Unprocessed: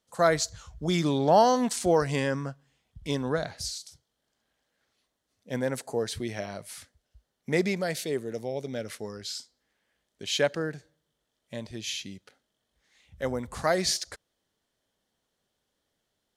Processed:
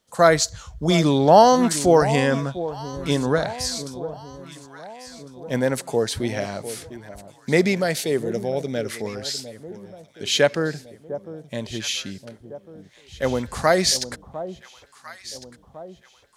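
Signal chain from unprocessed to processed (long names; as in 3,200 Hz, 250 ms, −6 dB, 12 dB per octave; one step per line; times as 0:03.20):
delay that swaps between a low-pass and a high-pass 702 ms, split 970 Hz, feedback 65%, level −12.5 dB
level +7.5 dB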